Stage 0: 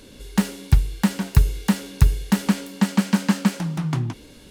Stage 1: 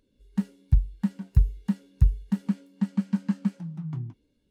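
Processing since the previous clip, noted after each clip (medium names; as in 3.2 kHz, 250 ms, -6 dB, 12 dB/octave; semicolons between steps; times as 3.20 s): spectral contrast expander 1.5:1; trim -5.5 dB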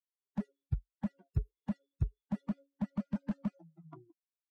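expander on every frequency bin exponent 3; band-pass filter 770 Hz, Q 0.71; slew-rate limiter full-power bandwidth 3.6 Hz; trim +7 dB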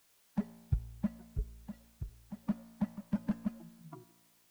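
trance gate "x..xx.xx.xx." 130 bpm -12 dB; added noise white -71 dBFS; feedback comb 57 Hz, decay 1.4 s, harmonics all, mix 60%; trim +9 dB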